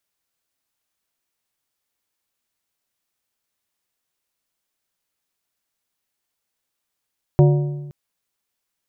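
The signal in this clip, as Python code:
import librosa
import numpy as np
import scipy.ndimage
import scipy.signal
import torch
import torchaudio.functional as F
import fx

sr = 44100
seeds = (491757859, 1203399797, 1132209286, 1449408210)

y = fx.strike_metal(sr, length_s=0.52, level_db=-8.0, body='plate', hz=145.0, decay_s=1.2, tilt_db=6.0, modes=5)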